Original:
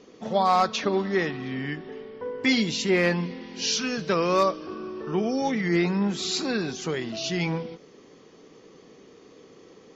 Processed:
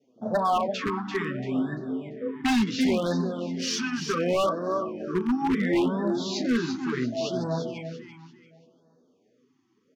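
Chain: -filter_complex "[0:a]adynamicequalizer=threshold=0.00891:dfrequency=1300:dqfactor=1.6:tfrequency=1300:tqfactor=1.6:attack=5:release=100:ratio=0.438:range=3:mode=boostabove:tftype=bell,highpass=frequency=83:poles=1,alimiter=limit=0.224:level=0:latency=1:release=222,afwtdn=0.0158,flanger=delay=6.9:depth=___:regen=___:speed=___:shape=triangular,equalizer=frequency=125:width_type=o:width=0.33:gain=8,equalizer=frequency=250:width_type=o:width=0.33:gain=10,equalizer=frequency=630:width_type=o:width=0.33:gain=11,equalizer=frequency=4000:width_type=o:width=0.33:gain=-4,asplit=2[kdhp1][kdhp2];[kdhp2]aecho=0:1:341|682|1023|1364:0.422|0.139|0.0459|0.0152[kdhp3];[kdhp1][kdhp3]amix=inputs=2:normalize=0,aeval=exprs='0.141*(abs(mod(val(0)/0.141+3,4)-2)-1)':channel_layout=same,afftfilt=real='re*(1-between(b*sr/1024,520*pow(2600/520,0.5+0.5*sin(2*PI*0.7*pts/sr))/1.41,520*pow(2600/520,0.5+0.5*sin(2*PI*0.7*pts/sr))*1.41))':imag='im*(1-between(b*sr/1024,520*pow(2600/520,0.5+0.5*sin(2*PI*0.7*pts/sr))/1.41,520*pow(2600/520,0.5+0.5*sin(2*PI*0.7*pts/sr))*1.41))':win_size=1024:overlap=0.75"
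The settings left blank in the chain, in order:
6.1, 2, 0.84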